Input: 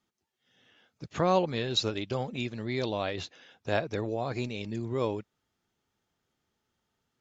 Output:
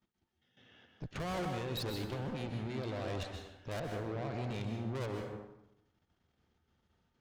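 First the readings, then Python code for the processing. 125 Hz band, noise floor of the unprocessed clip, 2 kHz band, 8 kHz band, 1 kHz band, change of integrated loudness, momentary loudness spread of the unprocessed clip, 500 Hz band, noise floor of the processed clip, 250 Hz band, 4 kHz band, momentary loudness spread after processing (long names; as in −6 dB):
−3.0 dB, −82 dBFS, −7.5 dB, can't be measured, −9.5 dB, −8.5 dB, 13 LU, −9.5 dB, −81 dBFS, −6.5 dB, −11.0 dB, 9 LU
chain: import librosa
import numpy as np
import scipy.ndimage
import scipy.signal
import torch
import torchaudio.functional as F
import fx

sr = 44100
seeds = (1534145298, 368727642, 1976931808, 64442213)

y = scipy.signal.sosfilt(scipy.signal.butter(2, 4700.0, 'lowpass', fs=sr, output='sos'), x)
y = fx.low_shelf(y, sr, hz=240.0, db=8.0)
y = fx.level_steps(y, sr, step_db=13)
y = fx.tube_stage(y, sr, drive_db=43.0, bias=0.75)
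y = fx.rev_plate(y, sr, seeds[0], rt60_s=0.86, hf_ratio=0.65, predelay_ms=115, drr_db=3.0)
y = y * 10.0 ** (6.0 / 20.0)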